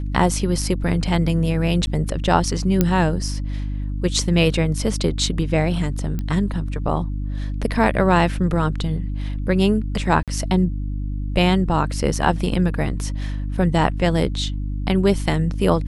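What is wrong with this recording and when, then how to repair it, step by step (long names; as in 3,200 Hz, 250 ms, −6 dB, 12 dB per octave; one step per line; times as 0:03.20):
mains hum 50 Hz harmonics 6 −25 dBFS
0:01.86–0:01.87: drop-out 10 ms
0:02.81: click −3 dBFS
0:06.19: click −14 dBFS
0:10.23–0:10.28: drop-out 47 ms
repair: click removal
hum removal 50 Hz, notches 6
repair the gap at 0:01.86, 10 ms
repair the gap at 0:10.23, 47 ms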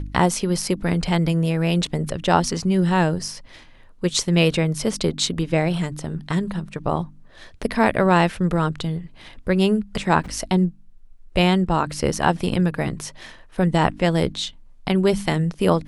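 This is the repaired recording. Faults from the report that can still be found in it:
none of them is left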